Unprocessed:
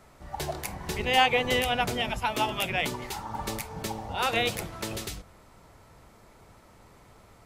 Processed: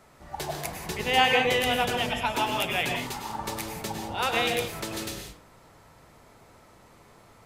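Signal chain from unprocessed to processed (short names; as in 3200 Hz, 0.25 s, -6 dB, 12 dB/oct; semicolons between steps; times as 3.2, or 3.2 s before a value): low shelf 100 Hz -8 dB; on a send: reverb, pre-delay 94 ms, DRR 3 dB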